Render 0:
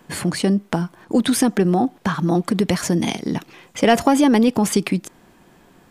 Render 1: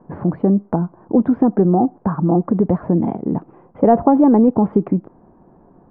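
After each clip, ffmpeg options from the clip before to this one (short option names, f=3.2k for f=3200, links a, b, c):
-af "lowpass=f=1k:w=0.5412,lowpass=f=1k:w=1.3066,volume=3dB"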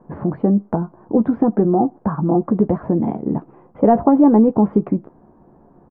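-filter_complex "[0:a]asplit=2[a][b];[b]adelay=14,volume=-9dB[c];[a][c]amix=inputs=2:normalize=0,volume=-1dB"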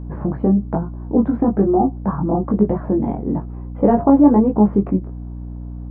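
-af "flanger=delay=19:depth=2.6:speed=1.1,aeval=exprs='val(0)+0.0282*(sin(2*PI*60*n/s)+sin(2*PI*2*60*n/s)/2+sin(2*PI*3*60*n/s)/3+sin(2*PI*4*60*n/s)/4+sin(2*PI*5*60*n/s)/5)':c=same,volume=2.5dB"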